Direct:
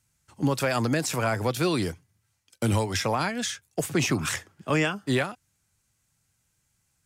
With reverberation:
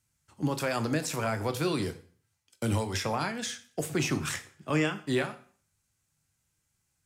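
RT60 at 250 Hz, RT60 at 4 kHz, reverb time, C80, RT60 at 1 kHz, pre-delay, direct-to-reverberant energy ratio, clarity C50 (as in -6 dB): 0.50 s, 0.45 s, 0.45 s, 18.5 dB, 0.50 s, 6 ms, 9.0 dB, 15.0 dB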